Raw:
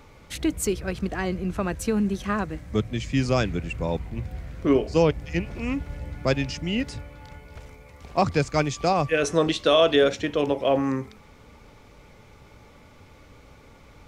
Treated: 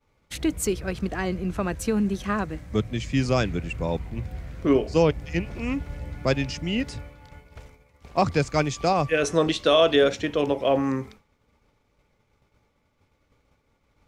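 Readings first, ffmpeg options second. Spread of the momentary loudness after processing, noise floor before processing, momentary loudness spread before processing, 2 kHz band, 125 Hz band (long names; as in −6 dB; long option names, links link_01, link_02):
10 LU, −51 dBFS, 12 LU, 0.0 dB, 0.0 dB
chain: -af "agate=range=-33dB:threshold=-38dB:ratio=3:detection=peak"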